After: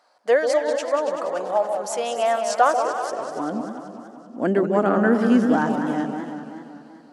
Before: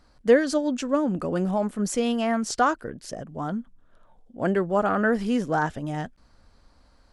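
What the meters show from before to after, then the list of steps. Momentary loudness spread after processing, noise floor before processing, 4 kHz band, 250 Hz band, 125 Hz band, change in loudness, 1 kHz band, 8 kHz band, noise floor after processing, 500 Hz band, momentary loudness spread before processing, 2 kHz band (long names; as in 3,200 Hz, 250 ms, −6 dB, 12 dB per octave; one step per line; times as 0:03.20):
16 LU, −59 dBFS, +1.5 dB, +3.0 dB, −1.0 dB, +3.0 dB, +5.0 dB, +1.0 dB, −48 dBFS, +4.0 dB, 13 LU, +2.0 dB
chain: high-pass filter sweep 680 Hz → 250 Hz, 0:02.43–0:03.78
delay that swaps between a low-pass and a high-pass 141 ms, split 880 Hz, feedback 55%, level −6 dB
feedback echo with a swinging delay time 192 ms, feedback 63%, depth 182 cents, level −9 dB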